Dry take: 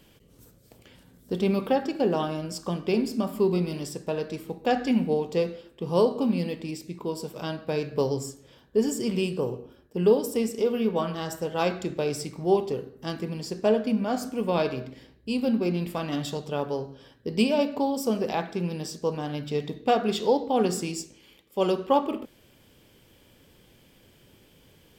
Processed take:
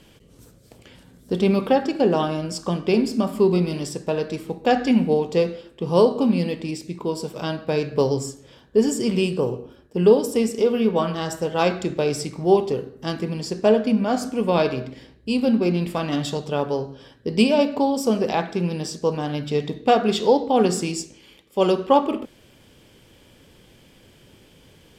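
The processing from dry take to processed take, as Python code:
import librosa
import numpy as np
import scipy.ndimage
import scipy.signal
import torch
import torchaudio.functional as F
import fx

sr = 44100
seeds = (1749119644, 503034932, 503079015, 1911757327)

y = scipy.signal.sosfilt(scipy.signal.butter(2, 11000.0, 'lowpass', fs=sr, output='sos'), x)
y = y * librosa.db_to_amplitude(5.5)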